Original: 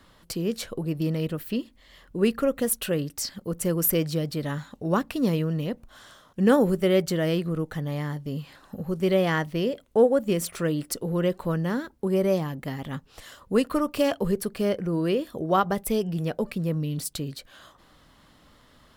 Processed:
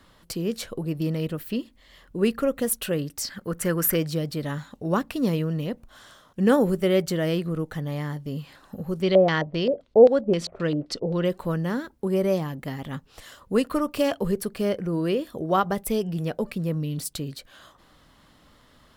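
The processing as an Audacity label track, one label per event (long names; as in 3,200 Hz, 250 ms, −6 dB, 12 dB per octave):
3.300000	3.960000	parametric band 1,600 Hz +12 dB 0.95 octaves
9.020000	11.250000	auto-filter low-pass square 3.8 Hz 620–4,300 Hz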